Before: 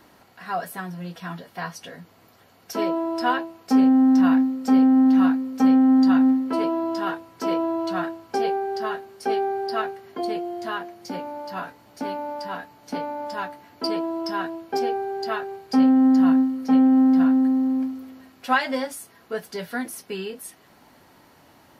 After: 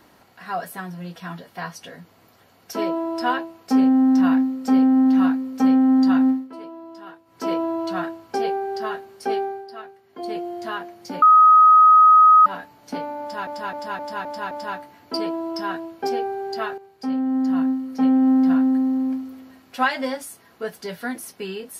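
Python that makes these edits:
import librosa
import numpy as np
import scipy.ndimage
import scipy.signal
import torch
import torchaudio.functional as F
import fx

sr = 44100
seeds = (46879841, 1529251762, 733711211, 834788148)

y = fx.edit(x, sr, fx.fade_down_up(start_s=6.29, length_s=1.15, db=-14.0, fade_s=0.19),
    fx.fade_down_up(start_s=9.37, length_s=1.01, db=-12.0, fade_s=0.29),
    fx.bleep(start_s=11.22, length_s=1.24, hz=1260.0, db=-8.0),
    fx.repeat(start_s=13.21, length_s=0.26, count=6),
    fx.fade_in_from(start_s=15.48, length_s=1.54, floor_db=-12.0), tone=tone)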